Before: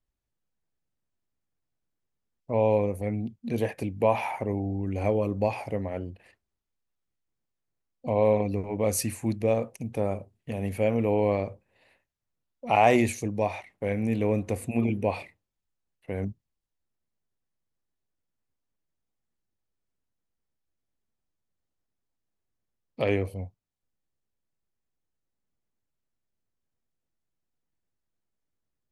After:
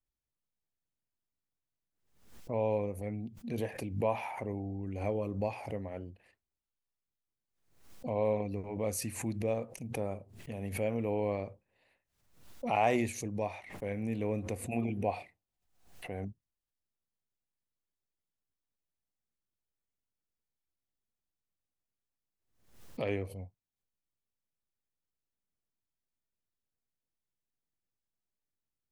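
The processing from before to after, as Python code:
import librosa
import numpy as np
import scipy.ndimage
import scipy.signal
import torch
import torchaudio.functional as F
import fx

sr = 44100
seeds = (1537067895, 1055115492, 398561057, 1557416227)

y = fx.peak_eq(x, sr, hz=730.0, db=10.0, octaves=0.21, at=(14.66, 16.25))
y = fx.pre_swell(y, sr, db_per_s=88.0)
y = F.gain(torch.from_numpy(y), -8.5).numpy()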